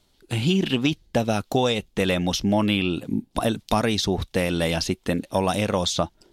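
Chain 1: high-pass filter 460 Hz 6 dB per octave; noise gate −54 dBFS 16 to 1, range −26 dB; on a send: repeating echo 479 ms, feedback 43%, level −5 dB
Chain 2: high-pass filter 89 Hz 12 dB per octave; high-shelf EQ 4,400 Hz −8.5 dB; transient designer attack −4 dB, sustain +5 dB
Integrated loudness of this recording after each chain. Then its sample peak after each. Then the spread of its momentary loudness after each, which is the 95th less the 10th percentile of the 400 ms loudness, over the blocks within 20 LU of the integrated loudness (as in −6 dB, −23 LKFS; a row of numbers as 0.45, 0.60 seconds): −25.5, −25.0 LKFS; −9.0, −9.0 dBFS; 4, 5 LU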